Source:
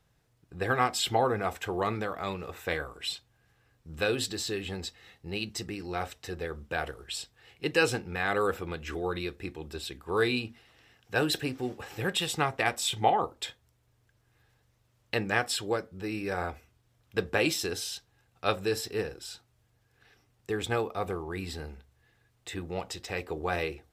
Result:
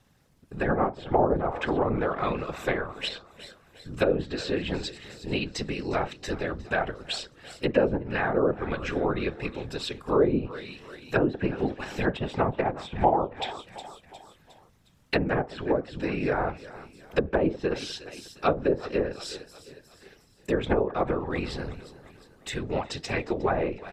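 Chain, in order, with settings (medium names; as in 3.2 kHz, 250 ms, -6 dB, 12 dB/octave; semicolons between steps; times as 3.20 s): feedback delay 359 ms, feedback 48%, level -18 dB; low-pass that closes with the level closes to 660 Hz, closed at -24.5 dBFS; whisper effect; trim +6 dB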